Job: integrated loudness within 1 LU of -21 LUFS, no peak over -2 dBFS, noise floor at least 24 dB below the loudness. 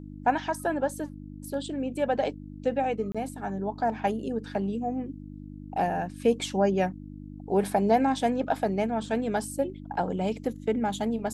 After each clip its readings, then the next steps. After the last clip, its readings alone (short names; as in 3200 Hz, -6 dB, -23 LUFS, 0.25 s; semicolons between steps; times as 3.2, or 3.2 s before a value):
dropouts 1; longest dropout 26 ms; hum 50 Hz; harmonics up to 300 Hz; hum level -40 dBFS; loudness -28.5 LUFS; peak -11.5 dBFS; loudness target -21.0 LUFS
-> interpolate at 3.12, 26 ms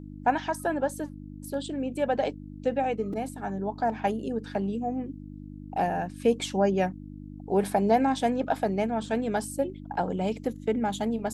dropouts 0; hum 50 Hz; harmonics up to 300 Hz; hum level -40 dBFS
-> de-hum 50 Hz, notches 6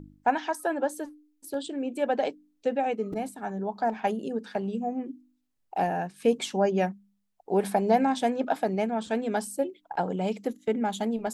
hum none; loudness -29.0 LUFS; peak -11.0 dBFS; loudness target -21.0 LUFS
-> gain +8 dB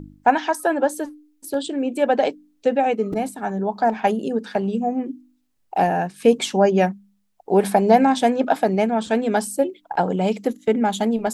loudness -21.0 LUFS; peak -3.0 dBFS; noise floor -65 dBFS